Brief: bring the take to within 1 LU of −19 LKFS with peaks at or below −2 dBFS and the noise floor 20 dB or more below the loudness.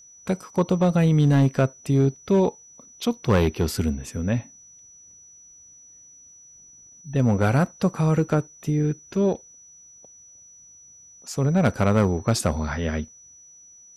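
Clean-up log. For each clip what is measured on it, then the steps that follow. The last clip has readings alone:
share of clipped samples 0.5%; peaks flattened at −12.5 dBFS; interfering tone 5,900 Hz; level of the tone −47 dBFS; integrated loudness −23.0 LKFS; sample peak −12.5 dBFS; target loudness −19.0 LKFS
→ clipped peaks rebuilt −12.5 dBFS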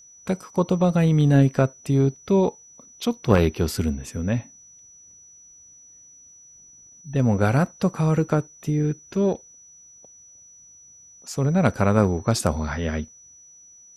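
share of clipped samples 0.0%; interfering tone 5,900 Hz; level of the tone −47 dBFS
→ notch filter 5,900 Hz, Q 30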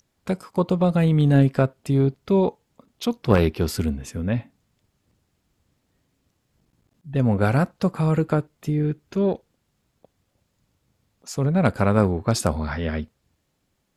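interfering tone none found; integrated loudness −22.5 LKFS; sample peak −4.0 dBFS; target loudness −19.0 LKFS
→ level +3.5 dB
brickwall limiter −2 dBFS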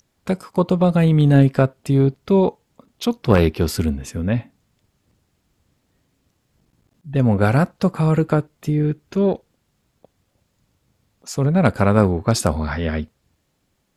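integrated loudness −19.0 LKFS; sample peak −2.0 dBFS; background noise floor −69 dBFS

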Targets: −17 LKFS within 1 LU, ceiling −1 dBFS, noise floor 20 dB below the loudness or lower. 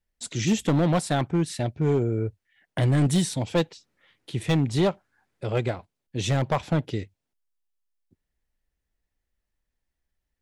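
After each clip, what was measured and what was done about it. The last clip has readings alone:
share of clipped samples 1.1%; peaks flattened at −16.0 dBFS; integrated loudness −25.5 LKFS; sample peak −16.0 dBFS; target loudness −17.0 LKFS
→ clipped peaks rebuilt −16 dBFS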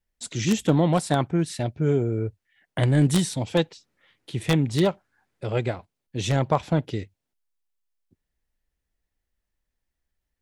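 share of clipped samples 0.0%; integrated loudness −24.5 LKFS; sample peak −7.0 dBFS; target loudness −17.0 LKFS
→ level +7.5 dB
brickwall limiter −1 dBFS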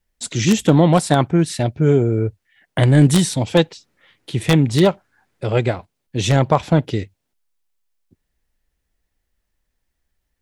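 integrated loudness −17.5 LKFS; sample peak −1.0 dBFS; background noise floor −76 dBFS

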